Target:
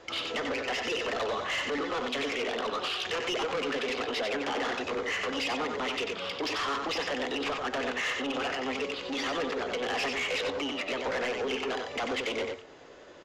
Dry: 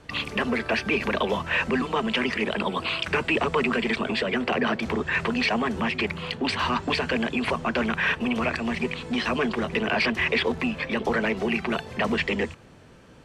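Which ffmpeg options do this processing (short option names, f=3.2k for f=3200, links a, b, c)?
-filter_complex "[0:a]lowshelf=f=240:t=q:w=1.5:g=-12,asplit=2[a][b];[b]acompressor=threshold=-34dB:ratio=10,volume=-2.5dB[c];[a][c]amix=inputs=2:normalize=0,flanger=delay=8.7:depth=2.1:regen=-87:speed=0.24:shape=triangular,volume=27dB,asoftclip=hard,volume=-27dB,asetrate=49501,aresample=44100,atempo=0.890899,aresample=16000,aresample=44100,asplit=2[d][e];[e]aecho=0:1:92:0.562[f];[d][f]amix=inputs=2:normalize=0,asoftclip=type=tanh:threshold=-24dB"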